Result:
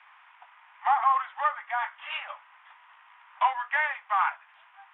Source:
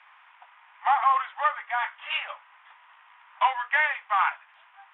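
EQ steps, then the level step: high-pass 570 Hz 24 dB/octave; dynamic bell 2.8 kHz, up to -5 dB, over -37 dBFS, Q 0.88; distance through air 65 m; 0.0 dB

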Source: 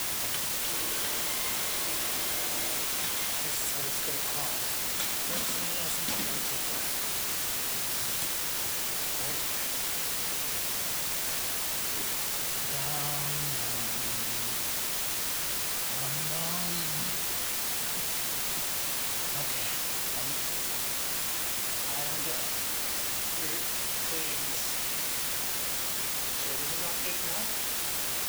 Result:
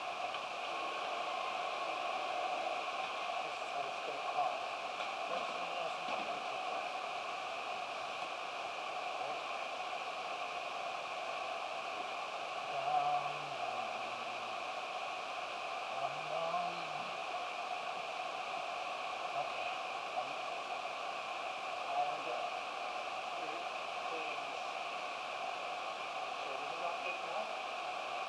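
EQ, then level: vowel filter a; distance through air 89 m; +10.0 dB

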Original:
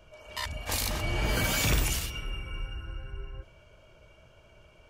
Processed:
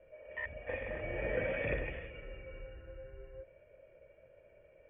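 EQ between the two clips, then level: cascade formant filter e; Chebyshev low-pass 3.4 kHz, order 10; +8.0 dB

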